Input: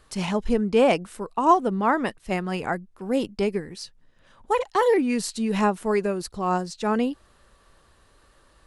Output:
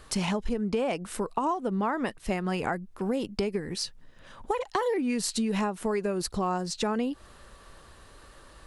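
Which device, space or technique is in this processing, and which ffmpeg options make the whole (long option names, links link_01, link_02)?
serial compression, peaks first: -af "acompressor=threshold=-27dB:ratio=5,acompressor=threshold=-35dB:ratio=2,volume=6.5dB"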